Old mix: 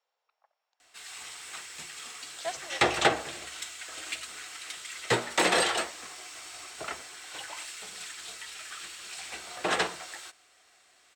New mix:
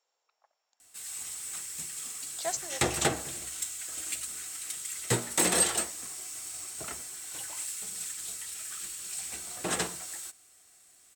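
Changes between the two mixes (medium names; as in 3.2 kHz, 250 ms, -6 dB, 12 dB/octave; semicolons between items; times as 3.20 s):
background -7.0 dB; master: remove three-band isolator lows -12 dB, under 390 Hz, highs -21 dB, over 4.8 kHz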